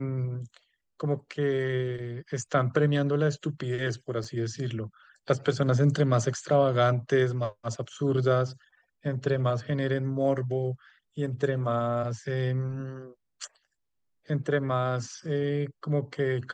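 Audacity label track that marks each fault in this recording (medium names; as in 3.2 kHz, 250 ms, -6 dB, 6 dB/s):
4.240000	4.240000	dropout 4.9 ms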